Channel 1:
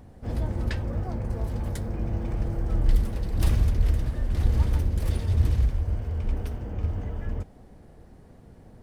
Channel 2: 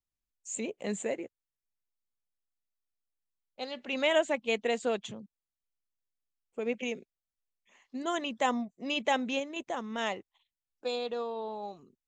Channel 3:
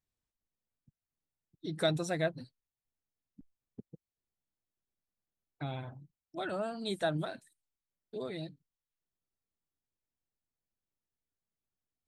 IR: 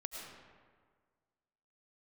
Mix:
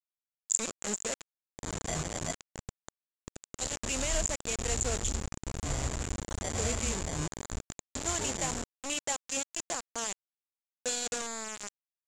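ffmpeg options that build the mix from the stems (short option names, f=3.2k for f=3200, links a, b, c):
-filter_complex "[0:a]bandreject=f=50:t=h:w=6,bandreject=f=100:t=h:w=6,bandreject=f=150:t=h:w=6,bandreject=f=200:t=h:w=6,acrusher=samples=14:mix=1:aa=0.000001:lfo=1:lforange=8.4:lforate=0.23,adelay=1250,volume=-14dB[a];[1:a]alimiter=limit=-22.5dB:level=0:latency=1:release=398,volume=-4.5dB,asplit=2[b][c];[c]volume=-22.5dB[d];[2:a]alimiter=level_in=3.5dB:limit=-24dB:level=0:latency=1:release=30,volume=-3.5dB,flanger=delay=0.3:depth=1.1:regen=13:speed=0.25:shape=triangular,acrusher=samples=33:mix=1:aa=0.000001,adelay=50,volume=0.5dB[e];[d]aecho=0:1:83:1[f];[a][b][e][f]amix=inputs=4:normalize=0,acrusher=bits=5:mix=0:aa=0.000001,lowpass=f=7.2k:t=q:w=9.9"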